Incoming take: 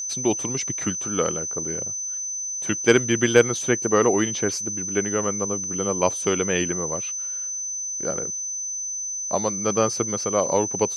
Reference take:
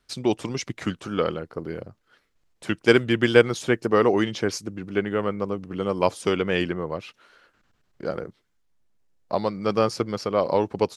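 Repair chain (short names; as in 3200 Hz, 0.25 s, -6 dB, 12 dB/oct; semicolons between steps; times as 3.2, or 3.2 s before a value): clip repair -4.5 dBFS; notch 6100 Hz, Q 30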